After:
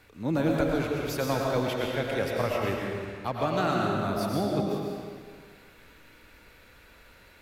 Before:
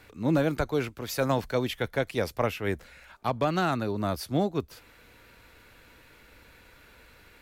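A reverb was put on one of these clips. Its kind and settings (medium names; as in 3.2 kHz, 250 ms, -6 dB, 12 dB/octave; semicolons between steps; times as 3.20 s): algorithmic reverb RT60 1.9 s, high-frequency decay 0.9×, pre-delay 70 ms, DRR -2 dB; trim -3.5 dB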